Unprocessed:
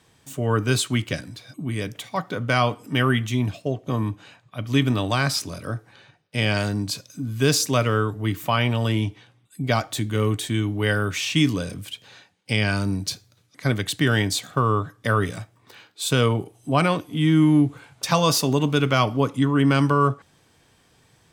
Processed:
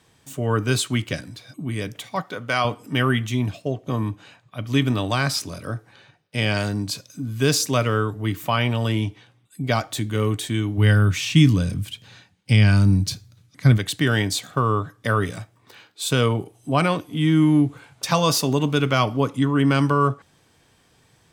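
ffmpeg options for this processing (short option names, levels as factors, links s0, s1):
-filter_complex "[0:a]asettb=1/sr,asplit=3[s0][s1][s2];[s0]atrim=end=2.224[s3];[s1]atrim=start=2.22:end=2.65,asetpts=PTS-STARTPTS,afade=t=in:d=0.004:c=qsin,afade=t=out:st=0.426:d=0.004:c=qsin,lowshelf=f=280:g=-11[s4];[s2]atrim=start=2.646[s5];[s3][s4]acrossfade=d=0.004:c1=hsin:c2=qsin[s6];[s6][s5]acrossfade=d=0.004:c1=qsin:c2=hsin,asplit=3[s7][s8][s9];[s7]afade=t=out:st=10.77:d=0.02[s10];[s8]asubboost=boost=3.5:cutoff=220,afade=t=in:st=10.77:d=0.02,afade=t=out:st=13.77:d=0.02[s11];[s9]afade=t=in:st=13.77:d=0.02[s12];[s10][s11][s12]amix=inputs=3:normalize=0"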